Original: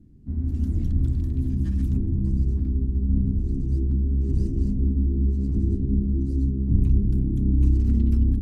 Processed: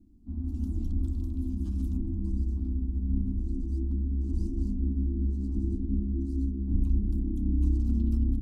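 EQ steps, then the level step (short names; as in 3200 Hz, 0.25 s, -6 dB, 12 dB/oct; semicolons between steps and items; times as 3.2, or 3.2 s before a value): notch 390 Hz, Q 12; fixed phaser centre 500 Hz, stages 6; -3.5 dB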